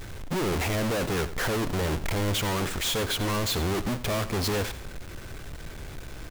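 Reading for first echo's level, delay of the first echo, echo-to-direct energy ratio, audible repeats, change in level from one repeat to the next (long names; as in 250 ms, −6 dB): −14.0 dB, 88 ms, −13.5 dB, 2, −10.5 dB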